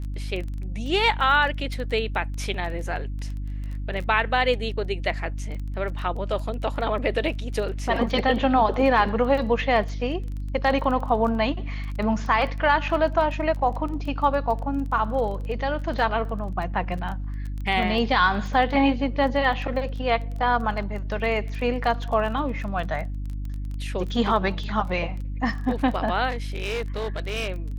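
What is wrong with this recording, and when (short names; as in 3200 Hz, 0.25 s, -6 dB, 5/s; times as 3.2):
crackle 16/s -31 dBFS
hum 50 Hz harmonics 6 -30 dBFS
26.29–27.49 clipped -23.5 dBFS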